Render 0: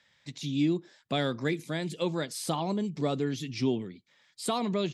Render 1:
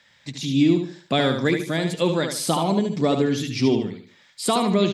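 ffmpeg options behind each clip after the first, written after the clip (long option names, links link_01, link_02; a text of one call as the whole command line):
ffmpeg -i in.wav -filter_complex "[0:a]bandreject=frequency=50:width_type=h:width=6,bandreject=frequency=100:width_type=h:width=6,bandreject=frequency=150:width_type=h:width=6,asplit=2[link_01][link_02];[link_02]aecho=0:1:74|148|222|296:0.473|0.151|0.0485|0.0155[link_03];[link_01][link_03]amix=inputs=2:normalize=0,volume=8.5dB" out.wav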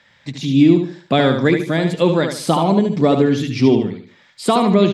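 ffmpeg -i in.wav -af "highshelf=frequency=4000:gain=-11.5,volume=6.5dB" out.wav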